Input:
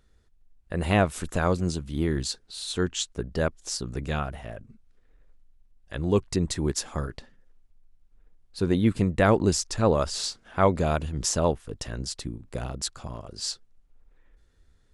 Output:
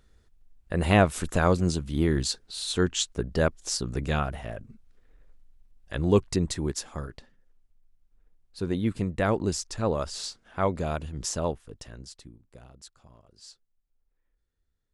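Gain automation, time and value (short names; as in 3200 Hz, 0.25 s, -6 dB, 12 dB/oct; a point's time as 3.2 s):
6.14 s +2 dB
6.9 s -5 dB
11.47 s -5 dB
12.62 s -17.5 dB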